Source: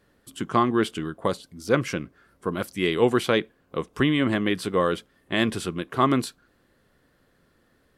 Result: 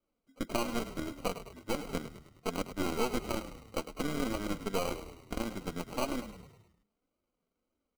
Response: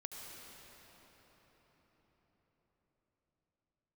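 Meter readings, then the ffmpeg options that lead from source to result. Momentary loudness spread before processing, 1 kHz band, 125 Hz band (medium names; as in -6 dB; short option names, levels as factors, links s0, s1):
12 LU, -11.5 dB, -13.0 dB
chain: -filter_complex "[0:a]aemphasis=mode=production:type=bsi,afftdn=nr=12:nf=-40,lowpass=f=2100:w=0.5412,lowpass=f=2100:w=1.3066,lowshelf=f=180:g=3,acompressor=threshold=0.0447:ratio=8,acrusher=samples=25:mix=1:aa=0.000001,aeval=exprs='0.168*(cos(1*acos(clip(val(0)/0.168,-1,1)))-cos(1*PI/2))+0.0299*(cos(6*acos(clip(val(0)/0.168,-1,1)))-cos(6*PI/2))+0.0075*(cos(7*acos(clip(val(0)/0.168,-1,1)))-cos(7*PI/2))+0.00422*(cos(8*acos(clip(val(0)/0.168,-1,1)))-cos(8*PI/2))':c=same,flanger=delay=3.1:depth=1.5:regen=-12:speed=1.8:shape=triangular,asplit=7[s0][s1][s2][s3][s4][s5][s6];[s1]adelay=104,afreqshift=-35,volume=0.266[s7];[s2]adelay=208,afreqshift=-70,volume=0.141[s8];[s3]adelay=312,afreqshift=-105,volume=0.075[s9];[s4]adelay=416,afreqshift=-140,volume=0.0398[s10];[s5]adelay=520,afreqshift=-175,volume=0.0209[s11];[s6]adelay=624,afreqshift=-210,volume=0.0111[s12];[s0][s7][s8][s9][s10][s11][s12]amix=inputs=7:normalize=0"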